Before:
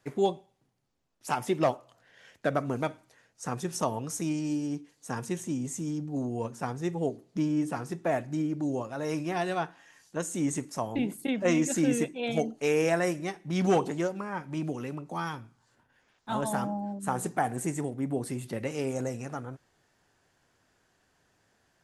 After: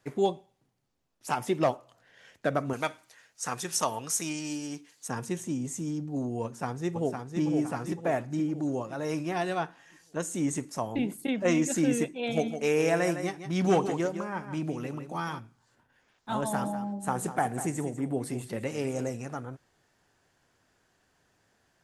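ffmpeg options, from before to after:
ffmpeg -i in.wav -filter_complex "[0:a]asettb=1/sr,asplit=3[link_01][link_02][link_03];[link_01]atrim=end=2.734[link_04];[link_02]atrim=start=2.73:end=5.08,asetpts=PTS-STARTPTS,afade=type=in:duration=0.004:curve=qsin,afade=type=out:start_time=2.346:duration=0.004:curve=qsin,tiltshelf=frequency=720:gain=-7.5[link_05];[link_03]atrim=start=5.076[link_06];[link_04][link_05]acrossfade=duration=0.004:curve1=hsin:curve2=qsin[link_07];[link_07][link_06]acrossfade=duration=0.004:curve1=qsin:curve2=hsin,asplit=2[link_08][link_09];[link_09]afade=type=in:start_time=6.44:duration=0.01,afade=type=out:start_time=7.41:duration=0.01,aecho=0:1:510|1020|1530|2040|2550|3060:0.562341|0.253054|0.113874|0.0512434|0.0230595|0.0103768[link_10];[link_08][link_10]amix=inputs=2:normalize=0,asplit=3[link_11][link_12][link_13];[link_11]afade=type=out:start_time=12.29:duration=0.02[link_14];[link_12]aecho=1:1:159:0.335,afade=type=in:start_time=12.29:duration=0.02,afade=type=out:start_time=15.38:duration=0.02[link_15];[link_13]afade=type=in:start_time=15.38:duration=0.02[link_16];[link_14][link_15][link_16]amix=inputs=3:normalize=0,asettb=1/sr,asplit=3[link_17][link_18][link_19];[link_17]atrim=end=16.364[link_20];[link_18]atrim=start=16.36:end=19.11,asetpts=PTS-STARTPTS,afade=type=in:duration=0.004:curve=qsin,afade=type=out:start_time=2.746:duration=0.004:curve=qsin,aecho=1:1:197:0.251,atrim=end_sample=121275[link_21];[link_19]atrim=start=19.106[link_22];[link_20][link_21]acrossfade=duration=0.004:curve1=hsin:curve2=qsin[link_23];[link_23][link_22]acrossfade=duration=0.004:curve1=qsin:curve2=hsin" out.wav

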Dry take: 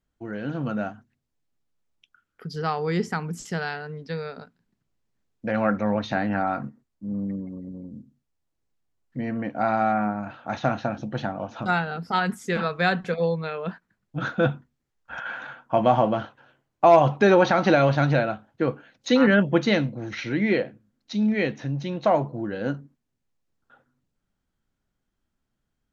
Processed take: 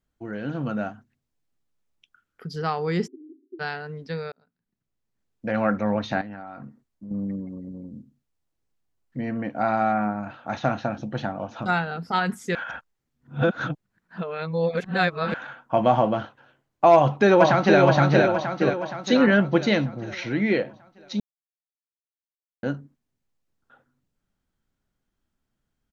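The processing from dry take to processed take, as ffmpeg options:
ffmpeg -i in.wav -filter_complex "[0:a]asplit=3[link_01][link_02][link_03];[link_01]afade=type=out:start_time=3.06:duration=0.02[link_04];[link_02]asuperpass=centerf=320:order=12:qfactor=2.5,afade=type=in:start_time=3.06:duration=0.02,afade=type=out:start_time=3.59:duration=0.02[link_05];[link_03]afade=type=in:start_time=3.59:duration=0.02[link_06];[link_04][link_05][link_06]amix=inputs=3:normalize=0,asettb=1/sr,asplit=3[link_07][link_08][link_09];[link_07]atrim=end=6.214[link_10];[link_08]atrim=start=6.21:end=7.11,asetpts=PTS-STARTPTS,afade=type=in:duration=0.004:curve=qsin,afade=type=out:start_time=0.896:duration=0.004:curve=qsin,acompressor=threshold=-36dB:ratio=5:attack=3.2:release=140:knee=1:detection=peak[link_11];[link_09]atrim=start=7.106[link_12];[link_10][link_11]acrossfade=duration=0.004:curve1=hsin:curve2=qsin[link_13];[link_13][link_12]acrossfade=duration=0.004:curve1=qsin:curve2=hsin,asplit=2[link_14][link_15];[link_15]afade=type=in:start_time=16.93:duration=0.01,afade=type=out:start_time=17.79:duration=0.01,aecho=0:1:470|940|1410|1880|2350|2820|3290|3760:0.707946|0.38937|0.214154|0.117784|0.0647815|0.0356298|0.0195964|0.010778[link_16];[link_14][link_16]amix=inputs=2:normalize=0,asplit=6[link_17][link_18][link_19][link_20][link_21][link_22];[link_17]atrim=end=4.32,asetpts=PTS-STARTPTS,afade=type=out:start_time=4.316:duration=0.004:curve=hsin[link_23];[link_18]atrim=start=4.32:end=12.552,asetpts=PTS-STARTPTS,afade=type=in:duration=1.21[link_24];[link_19]atrim=start=12.548:end=15.342,asetpts=PTS-STARTPTS,areverse[link_25];[link_20]atrim=start=15.338:end=21.2,asetpts=PTS-STARTPTS,afade=type=out:start_time=5.858:duration=0.004:curve=hsin[link_26];[link_21]atrim=start=21.2:end=22.63,asetpts=PTS-STARTPTS,volume=0[link_27];[link_22]atrim=start=22.63,asetpts=PTS-STARTPTS,afade=type=in:duration=0.004:curve=hsin[link_28];[link_23][link_24]concat=n=2:v=0:a=1[link_29];[link_29][link_25]acrossfade=duration=0.004:curve1=hsin:curve2=hsin[link_30];[link_26][link_27][link_28]concat=n=3:v=0:a=1[link_31];[link_30][link_31]acrossfade=duration=0.004:curve1=hsin:curve2=hsin" out.wav

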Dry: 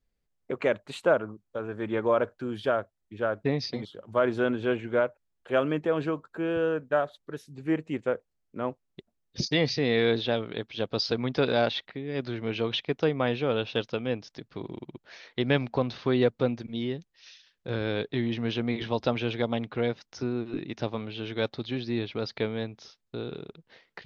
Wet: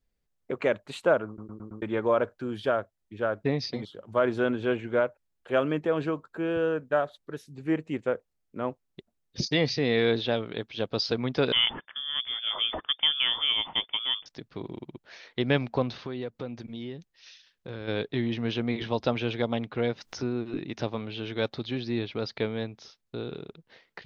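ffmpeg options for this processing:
ffmpeg -i in.wav -filter_complex "[0:a]asettb=1/sr,asplit=3[link_01][link_02][link_03];[link_01]atrim=end=11.524[link_04];[link_02]atrim=start=11.52:end=14.26,asetpts=PTS-STARTPTS,afade=type=in:duration=0.004:curve=qsin,afade=type=out:start_time=2.736:duration=0.004:curve=qsin,lowpass=frequency=3100:width_type=q:width=0.5098,lowpass=frequency=3100:width_type=q:width=0.6013,lowpass=frequency=3100:width_type=q:width=0.9,lowpass=frequency=3100:width_type=q:width=2.563,afreqshift=-3600[link_05];[link_03]atrim=start=14.256[link_06];[link_04][link_05]acrossfade=duration=0.004:curve1=hsin:curve2=qsin[link_07];[link_07][link_06]acrossfade=duration=0.004:curve1=qsin:curve2=hsin,asplit=3[link_08][link_09][link_10];[link_08]afade=type=out:start_time=16.02:duration=0.02[link_11];[link_09]acompressor=threshold=-36dB:ratio=2.5:attack=3.2:release=140:knee=1:detection=peak,afade=type=in:start_time=16.02:duration=0.02,afade=type=out:start_time=17.87:duration=0.02[link_12];[link_10]afade=type=in:start_time=17.87:duration=0.02[link_13];[link_11][link_12][link_13]amix=inputs=3:normalize=0,asettb=1/sr,asplit=3[link_14][link_15][link_16];[link_14]atrim=end=19.854[link_17];[link_15]atrim=start=19.85:end=21.99,asetpts=PTS-STARTPTS,afade=type=in:duration=0.004:curve=qsin,afade=type=out:start_time=2.136:duration=0.004:curve=qsin,acompressor=mode=upward:threshold=-32dB:ratio=2.5:attack=3.2:release=140:knee=2.83:detection=peak[link_18];[link_16]atrim=start=21.986[link_19];[link_17][link_18]acrossfade=duration=0.004:curve1=hsin:curve2=qsin[link_20];[link_20][link_19]acrossfade=duration=0.004:curve1=qsin:curve2=hsin,asplit=6[link_21][link_22][link_23][link_24][link_25][link_26];[link_21]atrim=end=1.382[link_27];[link_22]atrim=start=1.268:end=1.382[link_28];[link_23]atrim=start=1.268:end=1.382[link_29];[link_24]atrim=start=1.268:end=1.382[link_30];[link_25]atrim=start=1.268:end=1.382[link_31];[link_26]atrim=start=1.818[link_32];[link_27][link_28]acrossfade=duration=0.004:curve1=hsin:curve2=hsin[link_33];[link_33][link_29]acrossfade=duration=0.004:curve1=hsin:curve2=hsin[link_34];[link_34][link_30]acrossfade=duration=0.004:curve1=hsin:curve2=hsin[link_35];[link_35][link_31]acrossfade=duration=0.004:curve1=hsin:curve2=hsin[link_36];[link_36][link_32]acrossfade=duration=0.004:curve1=hsin:curve2=hsin" out.wav

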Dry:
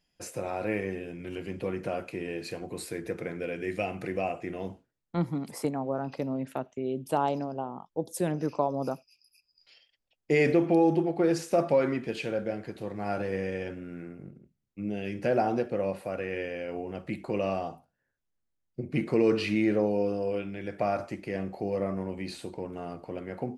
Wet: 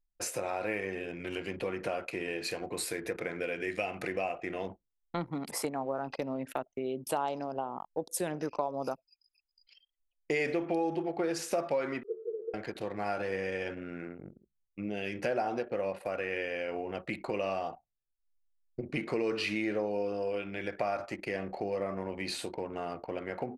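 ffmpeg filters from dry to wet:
ffmpeg -i in.wav -filter_complex "[0:a]asettb=1/sr,asplit=3[link_01][link_02][link_03];[link_01]atrim=end=12.034[link_04];[link_02]atrim=start=12.03:end=12.54,asetpts=PTS-STARTPTS,afade=type=in:duration=0.004:curve=qsin,afade=type=out:start_time=0.506:duration=0.004:curve=qsin,asuperpass=centerf=420:order=20:qfactor=3[link_05];[link_03]atrim=start=12.536[link_06];[link_04][link_05]acrossfade=duration=0.004:curve1=hsin:curve2=qsin[link_07];[link_07][link_06]acrossfade=duration=0.004:curve1=qsin:curve2=hsin,equalizer=frequency=130:width=0.36:gain=-11.5,acompressor=threshold=-40dB:ratio=2.5,anlmdn=0.001,volume=7.5dB" out.wav

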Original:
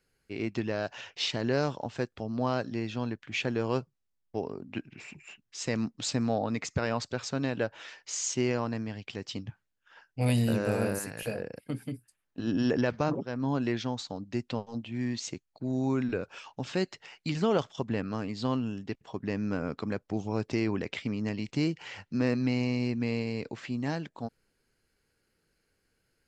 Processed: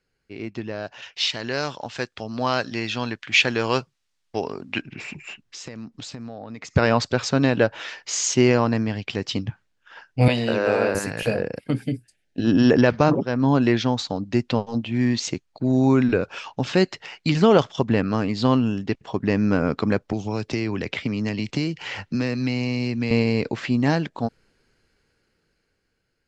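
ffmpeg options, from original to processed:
ffmpeg -i in.wav -filter_complex "[0:a]asettb=1/sr,asplit=3[link_01][link_02][link_03];[link_01]atrim=end=1.024[link_04];[link_02]atrim=start=1.02:end=4.82,asetpts=PTS-STARTPTS,afade=type=in:duration=0.004:curve=qsin,afade=type=out:start_time=3.796:duration=0.004:curve=qsin,tiltshelf=frequency=970:gain=-7[link_05];[link_03]atrim=start=4.816[link_06];[link_04][link_05]acrossfade=duration=0.004:curve1=hsin:curve2=qsin[link_07];[link_07][link_06]acrossfade=duration=0.004:curve1=qsin:curve2=hsin,asettb=1/sr,asplit=3[link_08][link_09][link_10];[link_08]atrim=end=5.434[link_11];[link_09]atrim=start=5.43:end=6.76,asetpts=PTS-STARTPTS,afade=type=in:duration=0.004:curve=qsin,afade=type=out:start_time=1.326:duration=0.004:curve=qsin,acompressor=threshold=-44dB:ratio=8:attack=3.2:release=140:knee=1:detection=peak[link_12];[link_10]atrim=start=6.756[link_13];[link_11][link_12]acrossfade=duration=0.004:curve1=hsin:curve2=qsin[link_14];[link_14][link_13]acrossfade=duration=0.004:curve1=qsin:curve2=hsin,asettb=1/sr,asplit=3[link_15][link_16][link_17];[link_15]atrim=end=10.284[link_18];[link_16]atrim=start=10.28:end=10.95,asetpts=PTS-STARTPTS,afade=type=in:duration=0.004:curve=qsin,afade=type=out:start_time=0.666:duration=0.004:curve=qsin,acrossover=split=330 5700:gain=0.178 1 0.0794[link_19][link_20][link_21];[link_19][link_20][link_21]amix=inputs=3:normalize=0[link_22];[link_17]atrim=start=10.946[link_23];[link_18][link_22]acrossfade=duration=0.004:curve1=hsin:curve2=qsin[link_24];[link_24][link_23]acrossfade=duration=0.004:curve1=qsin:curve2=hsin,asettb=1/sr,asplit=3[link_25][link_26][link_27];[link_25]atrim=end=11.814[link_28];[link_26]atrim=start=11.81:end=12.45,asetpts=PTS-STARTPTS,afade=type=in:duration=0.004:curve=qsin,afade=type=out:start_time=0.636:duration=0.004:curve=qsin,asuperstop=centerf=1100:order=4:qfactor=1.3[link_29];[link_27]atrim=start=12.446[link_30];[link_28][link_29]acrossfade=duration=0.004:curve1=hsin:curve2=qsin[link_31];[link_31][link_30]acrossfade=duration=0.004:curve1=qsin:curve2=hsin,asettb=1/sr,asplit=3[link_32][link_33][link_34];[link_32]atrim=end=20.124[link_35];[link_33]atrim=start=20.12:end=23.11,asetpts=PTS-STARTPTS,afade=type=in:duration=0.004:curve=qsin,afade=type=out:start_time=2.986:duration=0.004:curve=qsin,acrossover=split=120|2200[link_36][link_37][link_38];[link_36]acompressor=threshold=-46dB:ratio=4[link_39];[link_37]acompressor=threshold=-37dB:ratio=4[link_40];[link_38]acompressor=threshold=-44dB:ratio=4[link_41];[link_39][link_40][link_41]amix=inputs=3:normalize=0[link_42];[link_34]atrim=start=23.106[link_43];[link_35][link_42]acrossfade=duration=0.004:curve1=hsin:curve2=qsin[link_44];[link_44][link_43]acrossfade=duration=0.004:curve1=qsin:curve2=hsin,dynaudnorm=framelen=550:gausssize=7:maxgain=12.5dB,lowpass=6500" out.wav

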